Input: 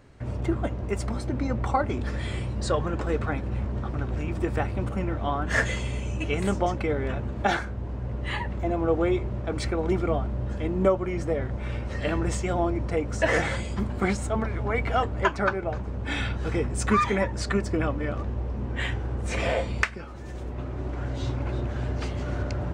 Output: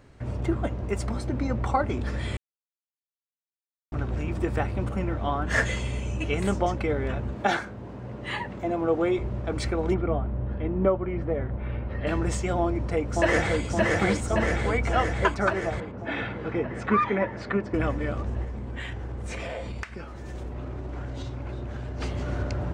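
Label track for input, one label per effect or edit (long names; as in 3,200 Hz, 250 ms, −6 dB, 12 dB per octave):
2.370000	3.920000	silence
7.360000	9.190000	high-pass filter 140 Hz
9.940000	12.070000	high-frequency loss of the air 420 metres
12.590000	13.630000	delay throw 570 ms, feedback 70%, level −1.5 dB
15.800000	17.740000	band-pass filter 140–2,400 Hz
18.440000	22.000000	downward compressor, threshold −30 dBFS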